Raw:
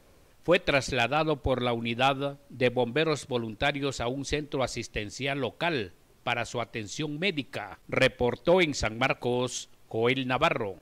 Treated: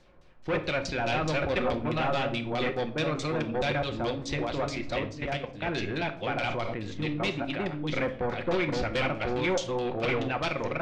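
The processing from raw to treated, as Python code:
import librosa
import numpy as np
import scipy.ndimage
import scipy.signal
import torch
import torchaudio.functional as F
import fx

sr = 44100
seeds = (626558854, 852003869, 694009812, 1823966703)

y = fx.reverse_delay(x, sr, ms=532, wet_db=-0.5)
y = fx.notch(y, sr, hz=430.0, q=12.0)
y = fx.level_steps(y, sr, step_db=14, at=(5.07, 5.67))
y = np.clip(y, -10.0 ** (-24.0 / 20.0), 10.0 ** (-24.0 / 20.0))
y = fx.filter_lfo_lowpass(y, sr, shape='saw_down', hz=4.7, low_hz=960.0, high_hz=5800.0, q=1.3)
y = fx.room_shoebox(y, sr, seeds[0], volume_m3=660.0, walls='furnished', distance_m=0.96)
y = fx.sustainer(y, sr, db_per_s=25.0, at=(6.48, 7.27))
y = y * librosa.db_to_amplitude(-2.0)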